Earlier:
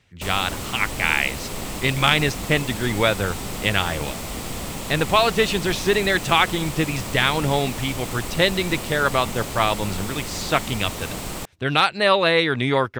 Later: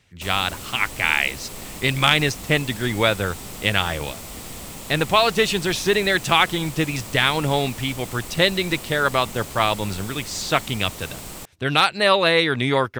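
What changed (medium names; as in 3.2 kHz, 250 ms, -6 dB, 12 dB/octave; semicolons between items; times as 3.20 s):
background -7.0 dB; master: add treble shelf 5.6 kHz +6.5 dB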